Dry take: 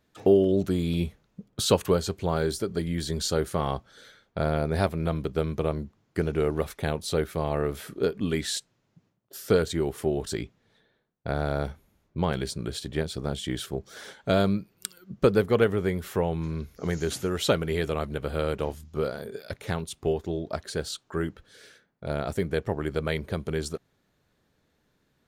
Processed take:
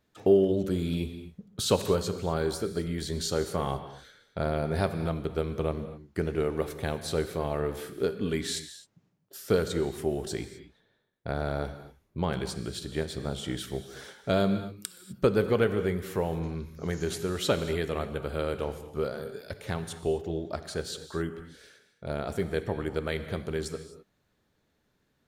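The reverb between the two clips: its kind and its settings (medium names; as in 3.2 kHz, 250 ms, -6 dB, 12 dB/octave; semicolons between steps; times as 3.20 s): gated-style reverb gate 280 ms flat, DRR 9.5 dB; trim -3 dB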